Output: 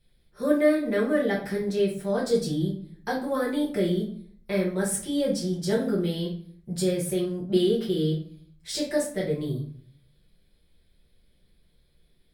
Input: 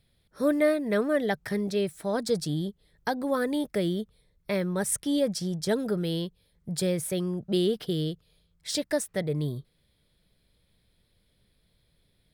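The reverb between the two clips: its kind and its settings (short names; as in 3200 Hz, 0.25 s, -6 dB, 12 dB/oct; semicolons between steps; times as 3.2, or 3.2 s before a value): shoebox room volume 44 m³, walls mixed, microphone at 1.2 m; gain -6 dB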